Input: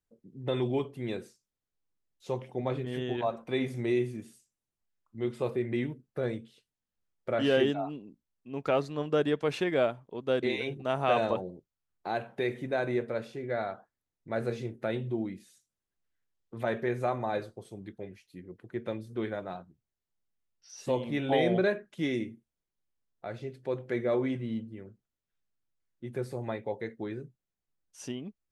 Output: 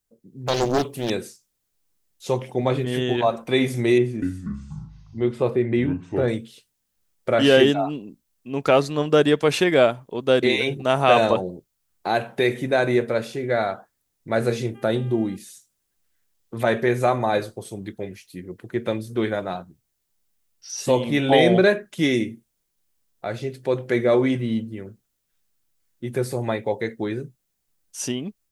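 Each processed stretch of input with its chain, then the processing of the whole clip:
0.47–1.10 s: high-pass 57 Hz 6 dB/octave + treble shelf 7.6 kHz +11.5 dB + loudspeaker Doppler distortion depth 0.89 ms
3.98–6.28 s: low-pass 1.7 kHz 6 dB/octave + ever faster or slower copies 241 ms, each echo -5 st, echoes 3, each echo -6 dB
14.74–15.35 s: peaking EQ 2.3 kHz -9.5 dB 0.62 oct + mains buzz 400 Hz, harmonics 8, -59 dBFS -6 dB/octave
whole clip: treble shelf 4.8 kHz +10.5 dB; level rider gain up to 6.5 dB; trim +3.5 dB

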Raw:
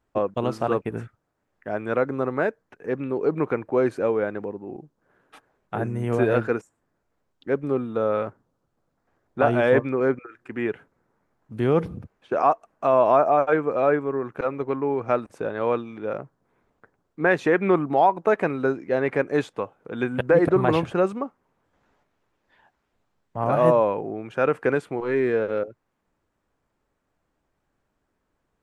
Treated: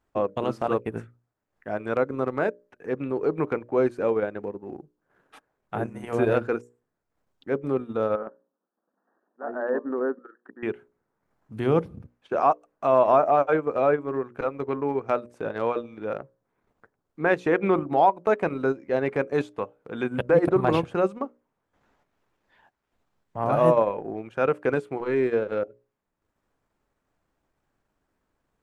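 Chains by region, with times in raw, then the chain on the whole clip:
8.15–10.63 s: slow attack 351 ms + compression 2.5:1, threshold -23 dBFS + brick-wall FIR band-pass 180–1900 Hz
whole clip: hum notches 60/120/180/240/300/360/420/480/540/600 Hz; dynamic bell 1.8 kHz, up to -4 dB, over -39 dBFS, Q 3; transient shaper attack -2 dB, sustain -8 dB

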